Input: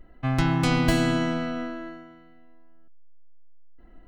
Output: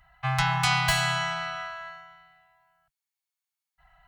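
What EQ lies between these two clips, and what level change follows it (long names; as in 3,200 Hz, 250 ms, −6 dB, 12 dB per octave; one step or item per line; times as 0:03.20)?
high-pass filter 40 Hz
elliptic band-stop filter 140–770 Hz, stop band 40 dB
low-shelf EQ 190 Hz −11.5 dB
+5.5 dB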